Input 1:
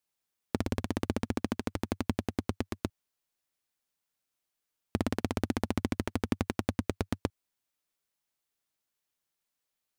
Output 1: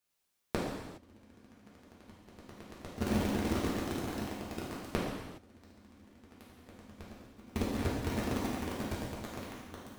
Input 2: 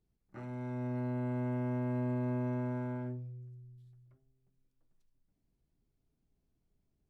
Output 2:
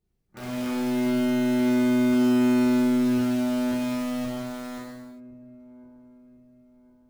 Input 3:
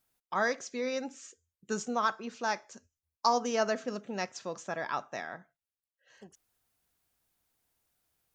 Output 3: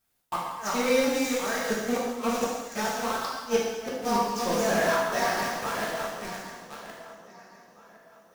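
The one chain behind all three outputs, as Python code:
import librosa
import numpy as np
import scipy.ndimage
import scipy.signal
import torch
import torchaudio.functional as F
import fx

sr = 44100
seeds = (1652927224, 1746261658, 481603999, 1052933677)

p1 = fx.reverse_delay_fb(x, sr, ms=531, feedback_pct=62, wet_db=-8.0)
p2 = fx.echo_bbd(p1, sr, ms=64, stages=2048, feedback_pct=44, wet_db=-24)
p3 = fx.quant_companded(p2, sr, bits=2)
p4 = p2 + (p3 * 10.0 ** (-7.0 / 20.0))
p5 = fx.gate_flip(p4, sr, shuts_db=-19.0, range_db=-35)
p6 = fx.rev_gated(p5, sr, seeds[0], gate_ms=440, shape='falling', drr_db=-6.0)
y = p6 * 10.0 ** (-1.5 / 20.0)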